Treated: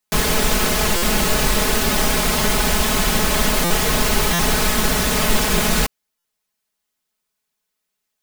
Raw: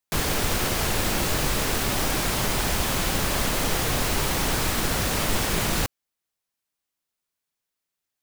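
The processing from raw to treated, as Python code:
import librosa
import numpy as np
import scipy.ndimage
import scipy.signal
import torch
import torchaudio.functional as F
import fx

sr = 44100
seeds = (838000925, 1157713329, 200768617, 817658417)

y = x + 0.76 * np.pad(x, (int(4.7 * sr / 1000.0), 0))[:len(x)]
y = fx.buffer_glitch(y, sr, at_s=(0.96, 3.64, 4.33, 6.18), block=256, repeats=10)
y = y * 10.0 ** (4.5 / 20.0)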